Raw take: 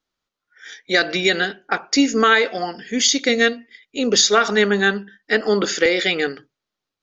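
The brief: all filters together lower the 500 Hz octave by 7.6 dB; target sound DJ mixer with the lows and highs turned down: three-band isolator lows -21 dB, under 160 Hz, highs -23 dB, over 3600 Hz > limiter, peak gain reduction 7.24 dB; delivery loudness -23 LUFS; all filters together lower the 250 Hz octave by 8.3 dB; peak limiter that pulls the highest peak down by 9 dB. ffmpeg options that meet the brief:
-filter_complex "[0:a]equalizer=f=250:t=o:g=-6.5,equalizer=f=500:t=o:g=-7,alimiter=limit=-13dB:level=0:latency=1,acrossover=split=160 3600:gain=0.0891 1 0.0708[a][b][c];[a][b][c]amix=inputs=3:normalize=0,volume=6dB,alimiter=limit=-12.5dB:level=0:latency=1"

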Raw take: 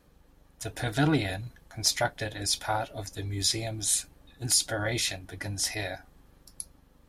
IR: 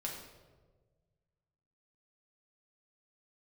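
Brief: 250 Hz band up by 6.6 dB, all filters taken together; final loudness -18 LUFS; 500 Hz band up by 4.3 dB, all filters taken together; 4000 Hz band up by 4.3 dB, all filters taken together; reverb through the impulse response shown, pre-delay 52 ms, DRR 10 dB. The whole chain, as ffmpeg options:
-filter_complex "[0:a]equalizer=f=250:t=o:g=7.5,equalizer=f=500:t=o:g=3.5,equalizer=f=4k:t=o:g=5.5,asplit=2[a][b];[1:a]atrim=start_sample=2205,adelay=52[c];[b][c]afir=irnorm=-1:irlink=0,volume=-10.5dB[d];[a][d]amix=inputs=2:normalize=0,volume=7dB"

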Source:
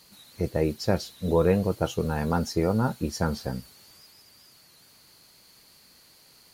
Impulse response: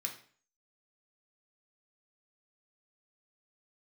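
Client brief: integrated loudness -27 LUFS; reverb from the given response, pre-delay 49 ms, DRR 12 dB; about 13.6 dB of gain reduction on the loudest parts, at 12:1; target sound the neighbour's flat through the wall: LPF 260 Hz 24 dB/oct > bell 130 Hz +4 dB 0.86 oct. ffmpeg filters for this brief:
-filter_complex "[0:a]acompressor=threshold=-31dB:ratio=12,asplit=2[a][b];[1:a]atrim=start_sample=2205,adelay=49[c];[b][c]afir=irnorm=-1:irlink=0,volume=-12dB[d];[a][d]amix=inputs=2:normalize=0,lowpass=f=260:w=0.5412,lowpass=f=260:w=1.3066,equalizer=f=130:t=o:w=0.86:g=4,volume=11.5dB"

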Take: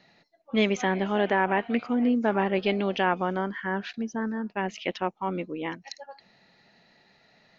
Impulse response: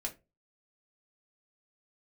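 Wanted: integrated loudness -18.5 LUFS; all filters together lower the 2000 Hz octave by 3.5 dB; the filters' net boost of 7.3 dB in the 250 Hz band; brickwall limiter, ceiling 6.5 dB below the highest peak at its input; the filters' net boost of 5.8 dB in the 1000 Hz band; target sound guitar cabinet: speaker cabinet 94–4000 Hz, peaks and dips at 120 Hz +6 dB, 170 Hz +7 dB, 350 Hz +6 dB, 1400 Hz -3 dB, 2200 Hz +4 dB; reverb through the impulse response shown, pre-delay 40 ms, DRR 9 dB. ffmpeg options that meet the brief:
-filter_complex "[0:a]equalizer=f=250:t=o:g=5.5,equalizer=f=1k:t=o:g=8.5,equalizer=f=2k:t=o:g=-8,alimiter=limit=-15dB:level=0:latency=1,asplit=2[a][b];[1:a]atrim=start_sample=2205,adelay=40[c];[b][c]afir=irnorm=-1:irlink=0,volume=-9.5dB[d];[a][d]amix=inputs=2:normalize=0,highpass=94,equalizer=f=120:t=q:w=4:g=6,equalizer=f=170:t=q:w=4:g=7,equalizer=f=350:t=q:w=4:g=6,equalizer=f=1.4k:t=q:w=4:g=-3,equalizer=f=2.2k:t=q:w=4:g=4,lowpass=f=4k:w=0.5412,lowpass=f=4k:w=1.3066,volume=4.5dB"

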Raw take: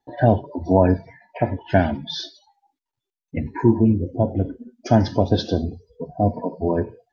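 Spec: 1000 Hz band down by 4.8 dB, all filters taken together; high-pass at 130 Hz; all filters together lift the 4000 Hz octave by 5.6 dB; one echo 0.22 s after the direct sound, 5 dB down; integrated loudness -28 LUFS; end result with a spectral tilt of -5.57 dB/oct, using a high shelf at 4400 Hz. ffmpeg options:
-af "highpass=130,equalizer=f=1k:t=o:g=-8,equalizer=f=4k:t=o:g=9,highshelf=f=4.4k:g=-4.5,aecho=1:1:220:0.562,volume=-5.5dB"

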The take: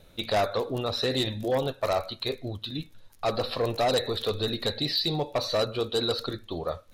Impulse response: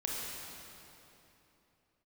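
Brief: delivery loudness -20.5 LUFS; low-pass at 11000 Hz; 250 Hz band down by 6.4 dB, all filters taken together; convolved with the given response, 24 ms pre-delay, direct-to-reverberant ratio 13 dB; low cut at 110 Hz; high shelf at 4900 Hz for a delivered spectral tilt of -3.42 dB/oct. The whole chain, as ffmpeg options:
-filter_complex "[0:a]highpass=110,lowpass=11k,equalizer=f=250:t=o:g=-9,highshelf=f=4.9k:g=5,asplit=2[a][b];[1:a]atrim=start_sample=2205,adelay=24[c];[b][c]afir=irnorm=-1:irlink=0,volume=-17dB[d];[a][d]amix=inputs=2:normalize=0,volume=8dB"

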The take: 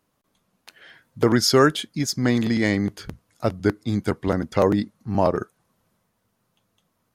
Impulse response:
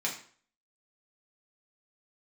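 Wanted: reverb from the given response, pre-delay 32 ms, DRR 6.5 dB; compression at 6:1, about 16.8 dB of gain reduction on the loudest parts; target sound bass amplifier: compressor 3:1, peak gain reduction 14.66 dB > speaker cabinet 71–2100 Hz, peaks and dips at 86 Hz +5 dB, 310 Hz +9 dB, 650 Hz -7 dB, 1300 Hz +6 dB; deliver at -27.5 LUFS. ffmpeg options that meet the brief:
-filter_complex "[0:a]acompressor=threshold=-31dB:ratio=6,asplit=2[a][b];[1:a]atrim=start_sample=2205,adelay=32[c];[b][c]afir=irnorm=-1:irlink=0,volume=-12.5dB[d];[a][d]amix=inputs=2:normalize=0,acompressor=threshold=-46dB:ratio=3,highpass=f=71:w=0.5412,highpass=f=71:w=1.3066,equalizer=f=86:t=q:w=4:g=5,equalizer=f=310:t=q:w=4:g=9,equalizer=f=650:t=q:w=4:g=-7,equalizer=f=1.3k:t=q:w=4:g=6,lowpass=f=2.1k:w=0.5412,lowpass=f=2.1k:w=1.3066,volume=17.5dB"

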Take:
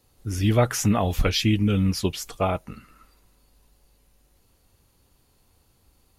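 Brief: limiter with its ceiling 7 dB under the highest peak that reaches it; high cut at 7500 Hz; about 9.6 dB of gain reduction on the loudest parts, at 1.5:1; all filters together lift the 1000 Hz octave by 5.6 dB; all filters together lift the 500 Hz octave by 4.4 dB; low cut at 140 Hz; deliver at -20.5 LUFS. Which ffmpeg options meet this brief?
-af "highpass=140,lowpass=7.5k,equalizer=f=500:t=o:g=3.5,equalizer=f=1k:t=o:g=6.5,acompressor=threshold=-38dB:ratio=1.5,volume=11.5dB,alimiter=limit=-7.5dB:level=0:latency=1"

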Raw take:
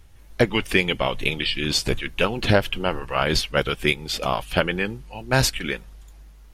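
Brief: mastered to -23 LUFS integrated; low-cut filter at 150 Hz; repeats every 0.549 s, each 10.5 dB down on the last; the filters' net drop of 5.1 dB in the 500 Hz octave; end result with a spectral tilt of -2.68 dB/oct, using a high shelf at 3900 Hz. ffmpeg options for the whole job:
-af "highpass=150,equalizer=f=500:t=o:g=-6.5,highshelf=f=3.9k:g=4,aecho=1:1:549|1098|1647:0.299|0.0896|0.0269"

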